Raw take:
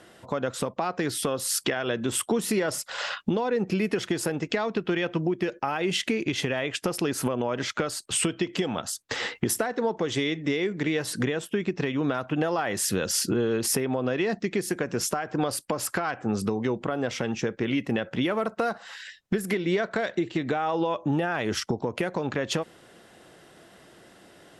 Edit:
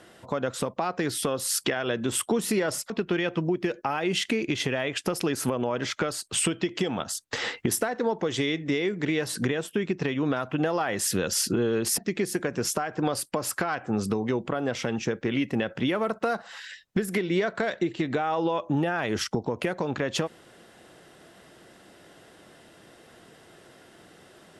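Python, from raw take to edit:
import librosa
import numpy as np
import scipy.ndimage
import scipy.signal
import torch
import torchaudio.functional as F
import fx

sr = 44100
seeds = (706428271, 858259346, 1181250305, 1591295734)

y = fx.edit(x, sr, fx.cut(start_s=2.9, length_s=1.78),
    fx.cut(start_s=13.76, length_s=0.58), tone=tone)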